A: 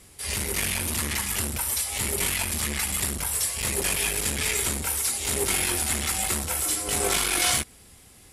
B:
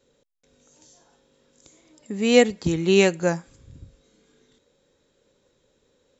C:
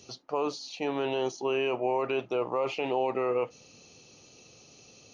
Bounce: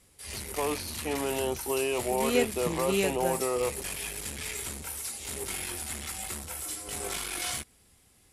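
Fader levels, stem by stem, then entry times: -10.5 dB, -11.0 dB, -1.0 dB; 0.00 s, 0.00 s, 0.25 s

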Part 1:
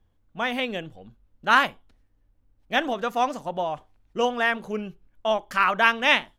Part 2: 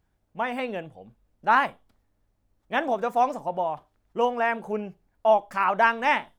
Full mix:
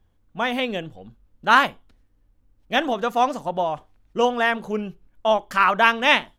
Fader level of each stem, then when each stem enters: +2.5 dB, -8.5 dB; 0.00 s, 0.00 s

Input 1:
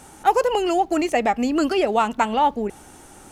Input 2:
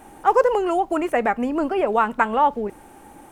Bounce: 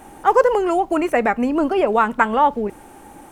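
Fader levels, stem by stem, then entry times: -13.5 dB, +3.0 dB; 0.00 s, 0.00 s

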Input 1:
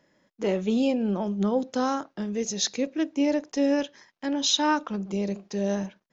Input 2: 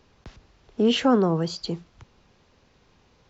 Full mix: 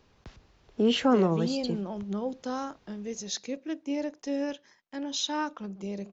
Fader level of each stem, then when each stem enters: -7.5 dB, -3.5 dB; 0.70 s, 0.00 s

